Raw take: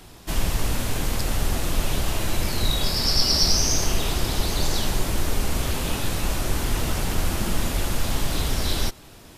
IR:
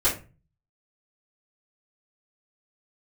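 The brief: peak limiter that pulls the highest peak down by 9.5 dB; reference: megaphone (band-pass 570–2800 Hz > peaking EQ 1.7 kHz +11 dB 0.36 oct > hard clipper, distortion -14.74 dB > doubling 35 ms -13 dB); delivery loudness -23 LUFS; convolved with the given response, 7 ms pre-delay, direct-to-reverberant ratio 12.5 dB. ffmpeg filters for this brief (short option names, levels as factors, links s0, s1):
-filter_complex "[0:a]alimiter=limit=0.2:level=0:latency=1,asplit=2[s0][s1];[1:a]atrim=start_sample=2205,adelay=7[s2];[s1][s2]afir=irnorm=-1:irlink=0,volume=0.0531[s3];[s0][s3]amix=inputs=2:normalize=0,highpass=570,lowpass=2800,equalizer=f=1700:t=o:w=0.36:g=11,asoftclip=type=hard:threshold=0.0355,asplit=2[s4][s5];[s5]adelay=35,volume=0.224[s6];[s4][s6]amix=inputs=2:normalize=0,volume=2.99"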